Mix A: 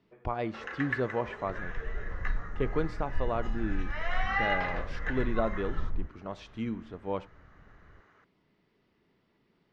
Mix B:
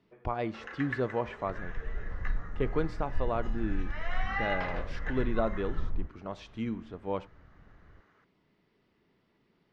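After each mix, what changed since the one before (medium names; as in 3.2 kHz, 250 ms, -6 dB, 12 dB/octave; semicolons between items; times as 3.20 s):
first sound -4.0 dB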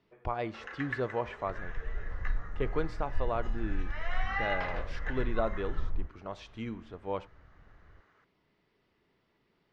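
master: add peaking EQ 210 Hz -5.5 dB 1.5 oct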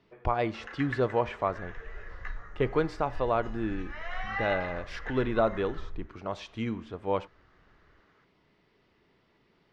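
speech +6.0 dB; second sound -7.5 dB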